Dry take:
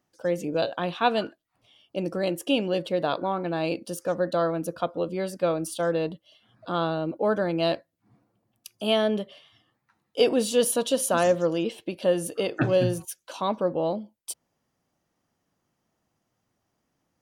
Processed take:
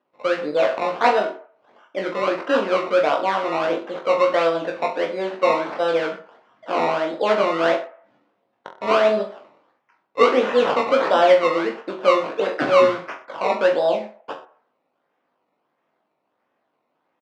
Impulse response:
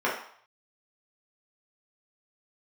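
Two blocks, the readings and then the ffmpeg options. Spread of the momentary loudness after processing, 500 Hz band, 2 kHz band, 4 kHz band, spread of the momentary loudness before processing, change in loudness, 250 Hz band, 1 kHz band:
13 LU, +6.5 dB, +9.5 dB, +2.0 dB, 11 LU, +6.0 dB, 0.0 dB, +9.5 dB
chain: -filter_complex "[0:a]acrusher=samples=19:mix=1:aa=0.000001:lfo=1:lforange=19:lforate=1.5,highpass=390,lowpass=3700,aemphasis=mode=reproduction:type=50kf,aecho=1:1:20|42|66.2|92.82|122.1:0.631|0.398|0.251|0.158|0.1,asplit=2[link_01][link_02];[1:a]atrim=start_sample=2205,lowpass=2200[link_03];[link_02][link_03]afir=irnorm=-1:irlink=0,volume=-22dB[link_04];[link_01][link_04]amix=inputs=2:normalize=0,volume=5dB"

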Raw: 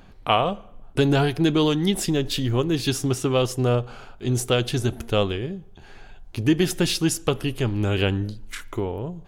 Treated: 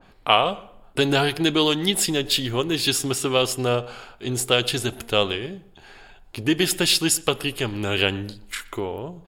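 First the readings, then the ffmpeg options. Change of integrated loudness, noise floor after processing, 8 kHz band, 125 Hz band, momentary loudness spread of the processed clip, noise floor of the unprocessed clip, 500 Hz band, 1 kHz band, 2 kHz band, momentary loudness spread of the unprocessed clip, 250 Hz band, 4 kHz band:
+1.5 dB, −51 dBFS, +6.0 dB, −6.0 dB, 13 LU, −46 dBFS, 0.0 dB, +2.0 dB, +5.0 dB, 11 LU, −2.5 dB, +6.5 dB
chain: -filter_complex "[0:a]lowshelf=frequency=250:gain=-11,bandreject=frequency=6000:width=6.9,asplit=2[link_01][link_02];[link_02]adelay=121,lowpass=frequency=2100:poles=1,volume=-19.5dB,asplit=2[link_03][link_04];[link_04]adelay=121,lowpass=frequency=2100:poles=1,volume=0.32,asplit=2[link_05][link_06];[link_06]adelay=121,lowpass=frequency=2100:poles=1,volume=0.32[link_07];[link_03][link_05][link_07]amix=inputs=3:normalize=0[link_08];[link_01][link_08]amix=inputs=2:normalize=0,adynamicequalizer=threshold=0.0126:dfrequency=1900:dqfactor=0.7:tfrequency=1900:tqfactor=0.7:attack=5:release=100:ratio=0.375:range=2.5:mode=boostabove:tftype=highshelf,volume=2.5dB"

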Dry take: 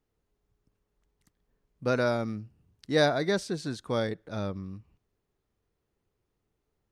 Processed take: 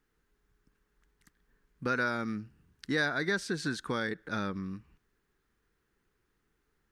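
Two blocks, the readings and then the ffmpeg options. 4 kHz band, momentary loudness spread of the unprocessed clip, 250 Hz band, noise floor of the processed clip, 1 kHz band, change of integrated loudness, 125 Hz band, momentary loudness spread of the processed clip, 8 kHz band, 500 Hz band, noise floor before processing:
−3.5 dB, 15 LU, −2.5 dB, −78 dBFS, −2.0 dB, −3.5 dB, −5.5 dB, 12 LU, −1.5 dB, −8.5 dB, −81 dBFS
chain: -af "acompressor=threshold=-32dB:ratio=4,equalizer=frequency=100:width_type=o:width=0.67:gain=-9,equalizer=frequency=630:width_type=o:width=0.67:gain=-9,equalizer=frequency=1600:width_type=o:width=0.67:gain=10,volume=4dB"

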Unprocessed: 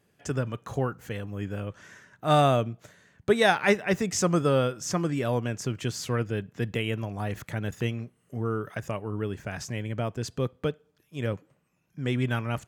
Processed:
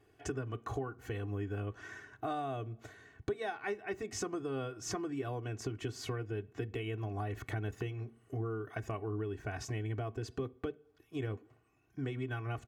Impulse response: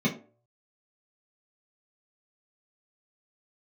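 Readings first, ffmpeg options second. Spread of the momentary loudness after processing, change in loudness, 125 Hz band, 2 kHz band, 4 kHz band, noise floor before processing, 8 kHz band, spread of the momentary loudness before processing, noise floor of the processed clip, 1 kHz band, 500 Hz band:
5 LU, −11.5 dB, −9.0 dB, −12.5 dB, −14.0 dB, −70 dBFS, −11.0 dB, 13 LU, −69 dBFS, −12.5 dB, −11.5 dB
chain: -filter_complex "[0:a]highshelf=frequency=3300:gain=-10.5,aecho=1:1:2.7:0.82,acompressor=threshold=-36dB:ratio=10,asplit=2[link_01][link_02];[1:a]atrim=start_sample=2205[link_03];[link_02][link_03]afir=irnorm=-1:irlink=0,volume=-28dB[link_04];[link_01][link_04]amix=inputs=2:normalize=0,volume=1dB"

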